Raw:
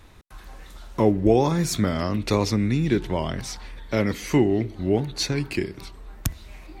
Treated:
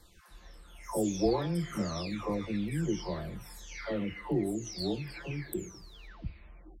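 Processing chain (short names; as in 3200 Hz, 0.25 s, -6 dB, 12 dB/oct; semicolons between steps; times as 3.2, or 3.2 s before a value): spectral delay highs early, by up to 0.728 s; gain -8.5 dB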